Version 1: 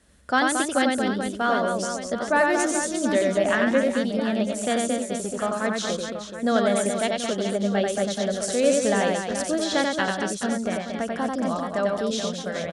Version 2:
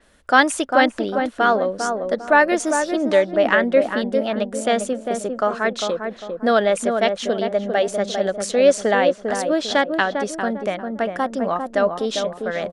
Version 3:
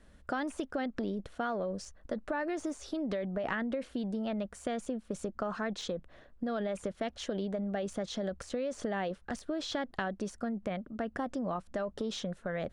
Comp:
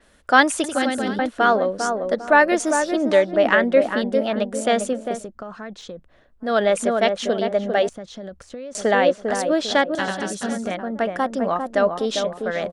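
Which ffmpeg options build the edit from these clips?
-filter_complex "[0:a]asplit=2[a][b];[2:a]asplit=2[c][d];[1:a]asplit=5[e][f][g][h][i];[e]atrim=end=0.642[j];[a]atrim=start=0.638:end=1.192[k];[f]atrim=start=1.188:end=5.29[l];[c]atrim=start=5.05:end=6.63[m];[g]atrim=start=6.39:end=7.892[n];[d]atrim=start=7.888:end=8.752[o];[h]atrim=start=8.748:end=9.952[p];[b]atrim=start=9.948:end=10.712[q];[i]atrim=start=10.708[r];[j][k]acrossfade=d=0.004:c1=hsin:c2=hsin[s];[s][l]acrossfade=d=0.004:c1=hsin:c2=hsin[t];[t][m]acrossfade=d=0.24:c1=tri:c2=tri[u];[u][n]acrossfade=d=0.24:c1=tri:c2=tri[v];[v][o]acrossfade=d=0.004:c1=hsin:c2=hsin[w];[w][p]acrossfade=d=0.004:c1=hsin:c2=hsin[x];[x][q]acrossfade=d=0.004:c1=hsin:c2=hsin[y];[y][r]acrossfade=d=0.004:c1=hsin:c2=hsin"

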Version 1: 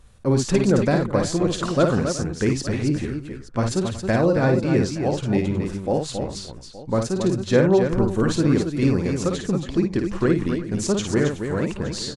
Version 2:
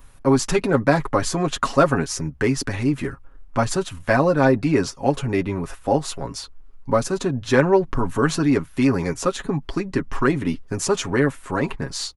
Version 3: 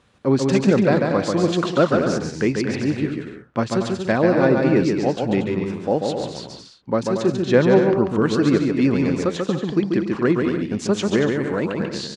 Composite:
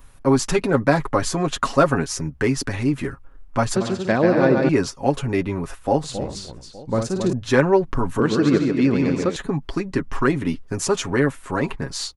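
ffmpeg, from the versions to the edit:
-filter_complex "[2:a]asplit=2[a][b];[1:a]asplit=4[c][d][e][f];[c]atrim=end=3.762[g];[a]atrim=start=3.758:end=4.692[h];[d]atrim=start=4.688:end=6.042[i];[0:a]atrim=start=6.038:end=7.332[j];[e]atrim=start=7.328:end=8.202[k];[b]atrim=start=8.198:end=9.362[l];[f]atrim=start=9.358[m];[g][h]acrossfade=d=0.004:c1=hsin:c2=hsin[n];[n][i]acrossfade=d=0.004:c1=hsin:c2=hsin[o];[o][j]acrossfade=d=0.004:c1=hsin:c2=hsin[p];[p][k]acrossfade=d=0.004:c1=hsin:c2=hsin[q];[q][l]acrossfade=d=0.004:c1=hsin:c2=hsin[r];[r][m]acrossfade=d=0.004:c1=hsin:c2=hsin"

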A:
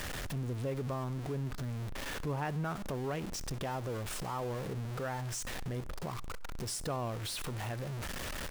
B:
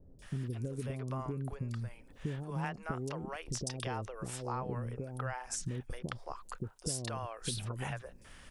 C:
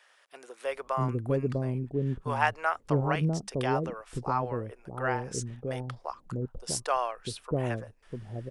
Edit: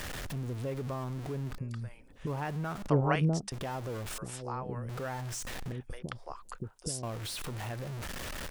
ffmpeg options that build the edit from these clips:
-filter_complex "[1:a]asplit=3[a][b][c];[0:a]asplit=5[d][e][f][g][h];[d]atrim=end=1.582[i];[a]atrim=start=1.578:end=2.272[j];[e]atrim=start=2.268:end=2.882[k];[2:a]atrim=start=2.878:end=3.522[l];[f]atrim=start=3.518:end=4.182[m];[b]atrim=start=4.178:end=4.892[n];[g]atrim=start=4.888:end=5.722[o];[c]atrim=start=5.718:end=7.032[p];[h]atrim=start=7.028[q];[i][j]acrossfade=d=0.004:c1=hsin:c2=hsin[r];[r][k]acrossfade=d=0.004:c1=hsin:c2=hsin[s];[s][l]acrossfade=d=0.004:c1=hsin:c2=hsin[t];[t][m]acrossfade=d=0.004:c1=hsin:c2=hsin[u];[u][n]acrossfade=d=0.004:c1=hsin:c2=hsin[v];[v][o]acrossfade=d=0.004:c1=hsin:c2=hsin[w];[w][p]acrossfade=d=0.004:c1=hsin:c2=hsin[x];[x][q]acrossfade=d=0.004:c1=hsin:c2=hsin"

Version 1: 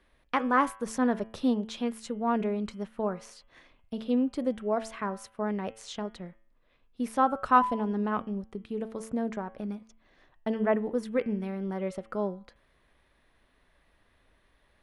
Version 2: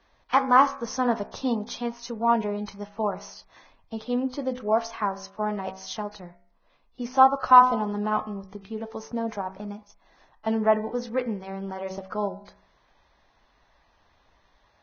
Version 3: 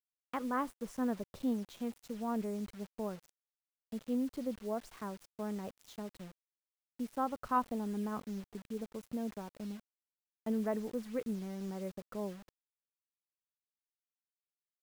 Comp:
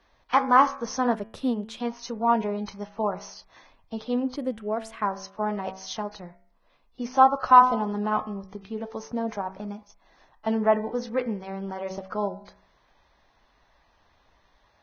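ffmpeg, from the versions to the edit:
-filter_complex "[0:a]asplit=2[a][b];[1:a]asplit=3[c][d][e];[c]atrim=end=1.152[f];[a]atrim=start=1.148:end=1.802[g];[d]atrim=start=1.798:end=4.362[h];[b]atrim=start=4.358:end=5.022[i];[e]atrim=start=5.018[j];[f][g]acrossfade=d=0.004:c1=hsin:c2=hsin[k];[k][h]acrossfade=d=0.004:c1=hsin:c2=hsin[l];[l][i]acrossfade=d=0.004:c1=hsin:c2=hsin[m];[m][j]acrossfade=d=0.004:c1=hsin:c2=hsin"

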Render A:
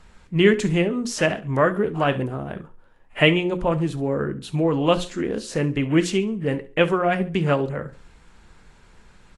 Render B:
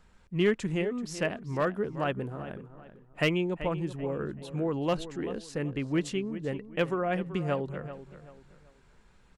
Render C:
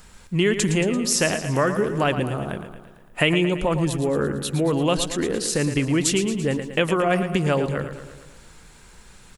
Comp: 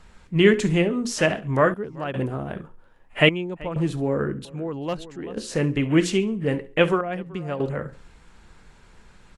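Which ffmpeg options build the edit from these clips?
-filter_complex "[1:a]asplit=4[a][b][c][d];[0:a]asplit=5[e][f][g][h][i];[e]atrim=end=1.742[j];[a]atrim=start=1.738:end=2.142[k];[f]atrim=start=2.138:end=3.292[l];[b]atrim=start=3.288:end=3.762[m];[g]atrim=start=3.758:end=4.452[n];[c]atrim=start=4.448:end=5.372[o];[h]atrim=start=5.368:end=7.012[p];[d]atrim=start=7.008:end=7.602[q];[i]atrim=start=7.598[r];[j][k]acrossfade=d=0.004:c1=hsin:c2=hsin[s];[s][l]acrossfade=d=0.004:c1=hsin:c2=hsin[t];[t][m]acrossfade=d=0.004:c1=hsin:c2=hsin[u];[u][n]acrossfade=d=0.004:c1=hsin:c2=hsin[v];[v][o]acrossfade=d=0.004:c1=hsin:c2=hsin[w];[w][p]acrossfade=d=0.004:c1=hsin:c2=hsin[x];[x][q]acrossfade=d=0.004:c1=hsin:c2=hsin[y];[y][r]acrossfade=d=0.004:c1=hsin:c2=hsin"

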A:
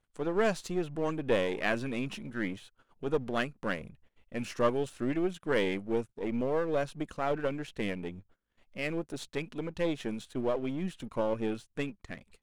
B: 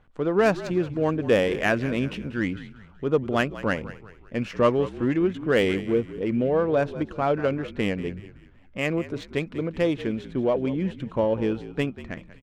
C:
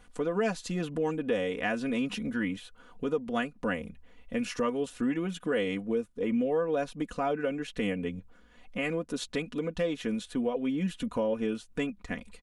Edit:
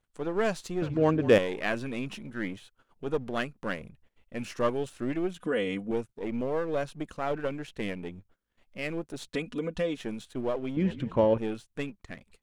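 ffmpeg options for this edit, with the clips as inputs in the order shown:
-filter_complex "[1:a]asplit=2[a][b];[2:a]asplit=2[c][d];[0:a]asplit=5[e][f][g][h][i];[e]atrim=end=0.822[j];[a]atrim=start=0.818:end=1.382[k];[f]atrim=start=1.378:end=5.392[l];[c]atrim=start=5.388:end=5.912[m];[g]atrim=start=5.908:end=9.342[n];[d]atrim=start=9.338:end=9.972[o];[h]atrim=start=9.968:end=10.772[p];[b]atrim=start=10.768:end=11.382[q];[i]atrim=start=11.378[r];[j][k]acrossfade=d=0.004:c1=hsin:c2=hsin[s];[s][l]acrossfade=d=0.004:c1=hsin:c2=hsin[t];[t][m]acrossfade=d=0.004:c1=hsin:c2=hsin[u];[u][n]acrossfade=d=0.004:c1=hsin:c2=hsin[v];[v][o]acrossfade=d=0.004:c1=hsin:c2=hsin[w];[w][p]acrossfade=d=0.004:c1=hsin:c2=hsin[x];[x][q]acrossfade=d=0.004:c1=hsin:c2=hsin[y];[y][r]acrossfade=d=0.004:c1=hsin:c2=hsin"

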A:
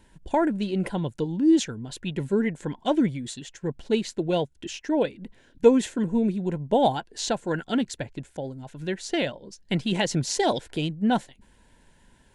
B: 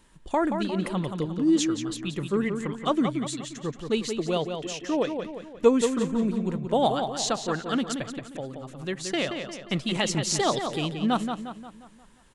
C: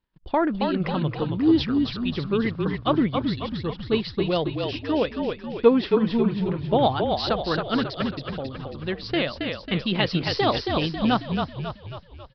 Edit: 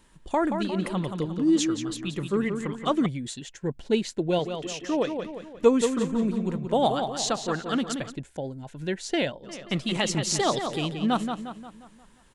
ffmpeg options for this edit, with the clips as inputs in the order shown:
-filter_complex "[0:a]asplit=2[a][b];[1:a]asplit=3[c][d][e];[c]atrim=end=3.062[f];[a]atrim=start=3.058:end=4.392[g];[d]atrim=start=4.388:end=8.17[h];[b]atrim=start=8.07:end=9.53[i];[e]atrim=start=9.43[j];[f][g]acrossfade=d=0.004:c1=hsin:c2=hsin[k];[k][h]acrossfade=d=0.004:c1=hsin:c2=hsin[l];[l][i]acrossfade=d=0.1:c1=tri:c2=tri[m];[m][j]acrossfade=d=0.1:c1=tri:c2=tri"

